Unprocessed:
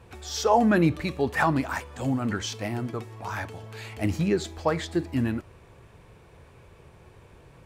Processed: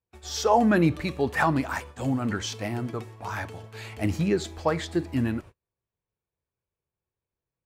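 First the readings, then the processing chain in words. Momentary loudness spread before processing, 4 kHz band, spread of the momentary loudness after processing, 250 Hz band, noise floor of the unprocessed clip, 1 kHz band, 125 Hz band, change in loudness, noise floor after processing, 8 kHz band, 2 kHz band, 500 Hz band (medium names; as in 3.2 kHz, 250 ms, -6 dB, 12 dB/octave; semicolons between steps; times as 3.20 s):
14 LU, 0.0 dB, 14 LU, 0.0 dB, -53 dBFS, 0.0 dB, 0.0 dB, 0.0 dB, under -85 dBFS, 0.0 dB, 0.0 dB, 0.0 dB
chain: gate -41 dBFS, range -39 dB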